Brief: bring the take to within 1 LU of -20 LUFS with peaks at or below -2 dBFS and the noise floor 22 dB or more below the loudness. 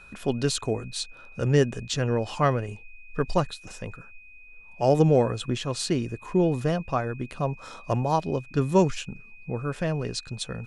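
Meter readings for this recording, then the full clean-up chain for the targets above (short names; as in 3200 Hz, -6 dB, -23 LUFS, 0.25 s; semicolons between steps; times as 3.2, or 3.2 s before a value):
steady tone 2500 Hz; tone level -48 dBFS; loudness -26.5 LUFS; peak -7.0 dBFS; loudness target -20.0 LUFS
-> notch 2500 Hz, Q 30; gain +6.5 dB; limiter -2 dBFS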